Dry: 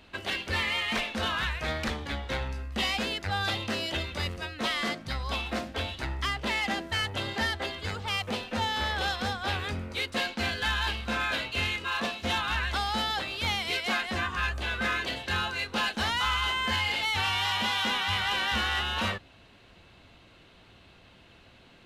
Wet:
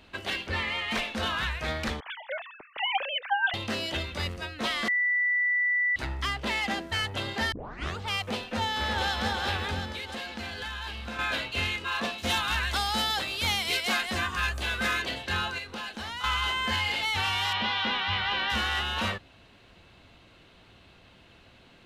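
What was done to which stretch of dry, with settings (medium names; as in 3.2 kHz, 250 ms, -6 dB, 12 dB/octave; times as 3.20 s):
0.47–0.91 s: low-pass 3.1 kHz 6 dB/octave
2.00–3.54 s: formants replaced by sine waves
4.88–5.96 s: bleep 1.97 kHz -22.5 dBFS
7.52 s: tape start 0.45 s
8.47–9.13 s: echo throw 360 ms, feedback 65%, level -4.5 dB
9.95–11.19 s: compression, threshold -33 dBFS
12.18–15.02 s: treble shelf 5.5 kHz +10.5 dB
15.58–16.24 s: compression 3:1, threshold -36 dBFS
17.53–18.50 s: low-pass 4.5 kHz 24 dB/octave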